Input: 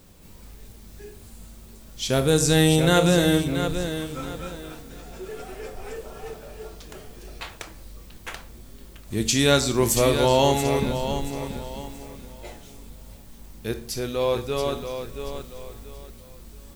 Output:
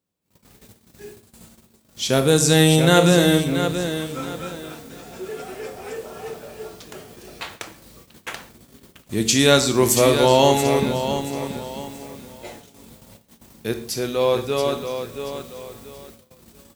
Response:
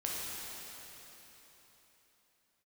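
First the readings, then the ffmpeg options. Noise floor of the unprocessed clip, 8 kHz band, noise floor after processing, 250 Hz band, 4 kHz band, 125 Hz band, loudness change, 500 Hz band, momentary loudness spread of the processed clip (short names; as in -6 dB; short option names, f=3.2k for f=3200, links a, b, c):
-46 dBFS, +4.0 dB, -58 dBFS, +3.5 dB, +4.0 dB, +2.5 dB, +3.5 dB, +4.0 dB, 23 LU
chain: -filter_complex "[0:a]agate=range=-32dB:threshold=-42dB:ratio=16:detection=peak,highpass=120,asplit=2[a][b];[1:a]atrim=start_sample=2205,afade=t=out:st=0.19:d=0.01,atrim=end_sample=8820[c];[b][c]afir=irnorm=-1:irlink=0,volume=-13dB[d];[a][d]amix=inputs=2:normalize=0,volume=2.5dB"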